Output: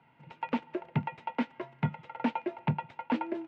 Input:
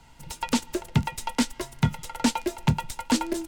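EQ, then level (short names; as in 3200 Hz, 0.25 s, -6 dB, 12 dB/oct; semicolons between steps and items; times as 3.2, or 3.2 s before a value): Chebyshev band-pass 130–2500 Hz, order 3; dynamic EQ 690 Hz, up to +4 dB, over -42 dBFS, Q 1.1; -6.5 dB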